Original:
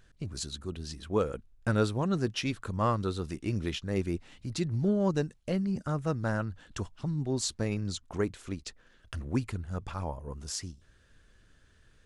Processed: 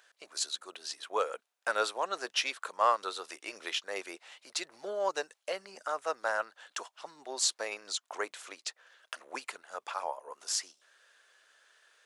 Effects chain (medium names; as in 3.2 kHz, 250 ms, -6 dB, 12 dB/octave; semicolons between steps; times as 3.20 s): high-pass 590 Hz 24 dB/octave; trim +4.5 dB